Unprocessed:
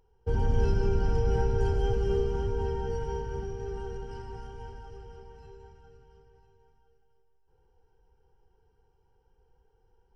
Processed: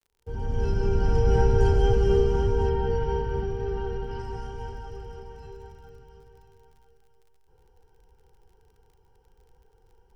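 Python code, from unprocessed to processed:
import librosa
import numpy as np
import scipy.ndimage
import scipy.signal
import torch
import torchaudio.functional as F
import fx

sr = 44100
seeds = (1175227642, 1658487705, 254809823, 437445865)

y = fx.fade_in_head(x, sr, length_s=1.46)
y = fx.lowpass(y, sr, hz=4700.0, slope=24, at=(2.69, 4.19))
y = fx.dmg_crackle(y, sr, seeds[0], per_s=46.0, level_db=-58.0)
y = F.gain(torch.from_numpy(y), 6.5).numpy()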